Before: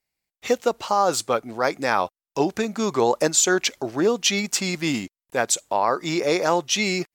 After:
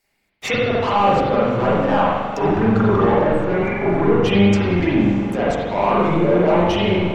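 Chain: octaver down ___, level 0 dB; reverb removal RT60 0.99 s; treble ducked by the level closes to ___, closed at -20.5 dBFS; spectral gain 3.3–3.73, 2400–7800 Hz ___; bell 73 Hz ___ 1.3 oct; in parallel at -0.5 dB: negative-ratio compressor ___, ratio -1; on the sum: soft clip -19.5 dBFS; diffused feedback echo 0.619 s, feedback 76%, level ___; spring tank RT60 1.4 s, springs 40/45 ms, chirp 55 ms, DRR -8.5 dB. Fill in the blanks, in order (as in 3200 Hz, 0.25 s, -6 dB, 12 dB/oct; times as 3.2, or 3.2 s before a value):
1 oct, 1100 Hz, -26 dB, -8 dB, -33 dBFS, -16 dB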